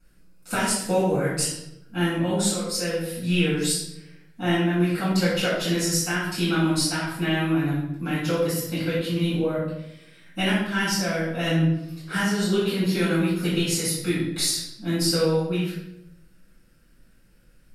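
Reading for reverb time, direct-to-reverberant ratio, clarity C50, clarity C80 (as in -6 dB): 0.75 s, -13.0 dB, 0.5 dB, 4.5 dB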